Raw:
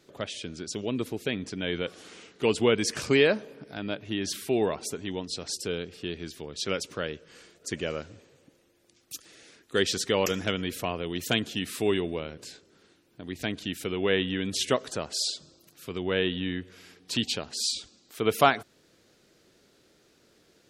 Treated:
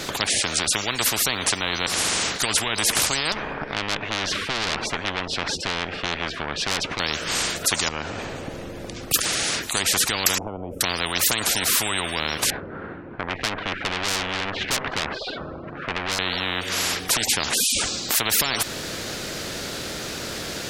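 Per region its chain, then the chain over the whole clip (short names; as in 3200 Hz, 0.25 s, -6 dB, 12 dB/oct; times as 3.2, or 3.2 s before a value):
3.32–7 LPF 1500 Hz + tube stage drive 33 dB, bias 0.6
7.88–9.14 tilt -4 dB/oct + compressor 12:1, threshold -36 dBFS
10.38–10.81 compressor 3:1, threshold -31 dBFS + inverse Chebyshev low-pass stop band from 1600 Hz, stop band 50 dB
12.5–16.19 LPF 1600 Hz 24 dB/oct + tube stage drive 37 dB, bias 0.55
whole clip: bell 430 Hz -3 dB; maximiser +16 dB; spectral compressor 10:1; gain -1.5 dB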